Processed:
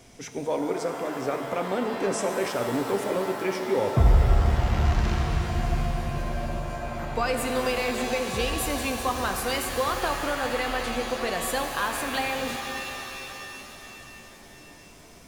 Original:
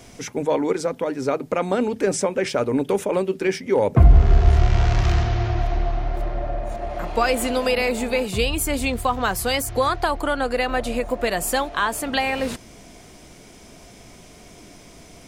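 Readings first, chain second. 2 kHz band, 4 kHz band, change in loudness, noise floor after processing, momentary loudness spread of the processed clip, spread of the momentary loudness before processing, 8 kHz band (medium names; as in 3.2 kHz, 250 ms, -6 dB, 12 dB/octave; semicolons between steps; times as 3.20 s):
-3.5 dB, -3.5 dB, -5.0 dB, -48 dBFS, 12 LU, 9 LU, -4.0 dB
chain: pitch-shifted reverb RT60 3.5 s, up +7 st, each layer -2 dB, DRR 5 dB; trim -7 dB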